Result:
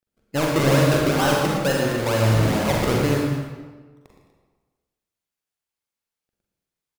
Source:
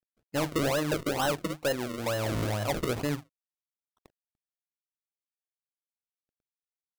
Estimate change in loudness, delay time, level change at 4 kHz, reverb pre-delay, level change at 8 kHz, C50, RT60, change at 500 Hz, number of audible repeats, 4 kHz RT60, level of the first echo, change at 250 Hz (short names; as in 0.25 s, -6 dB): +10.0 dB, 44 ms, +8.5 dB, 37 ms, +8.0 dB, 0.0 dB, 1.4 s, +9.5 dB, 2, 0.95 s, -6.5 dB, +10.5 dB